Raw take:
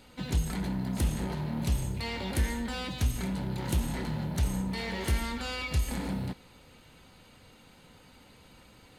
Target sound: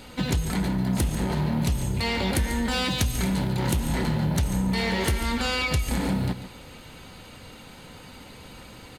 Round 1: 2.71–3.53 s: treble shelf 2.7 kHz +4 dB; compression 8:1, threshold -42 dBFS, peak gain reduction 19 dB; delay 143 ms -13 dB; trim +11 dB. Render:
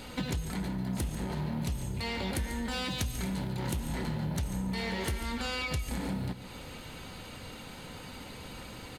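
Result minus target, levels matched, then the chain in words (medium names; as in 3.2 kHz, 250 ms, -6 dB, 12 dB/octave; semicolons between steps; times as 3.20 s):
compression: peak gain reduction +9 dB
2.71–3.53 s: treble shelf 2.7 kHz +4 dB; compression 8:1, threshold -32 dBFS, peak gain reduction 10.5 dB; delay 143 ms -13 dB; trim +11 dB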